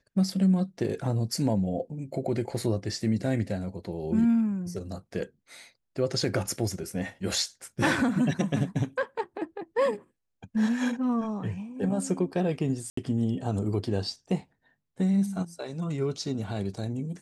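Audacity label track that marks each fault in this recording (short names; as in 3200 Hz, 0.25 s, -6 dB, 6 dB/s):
12.900000	12.970000	gap 74 ms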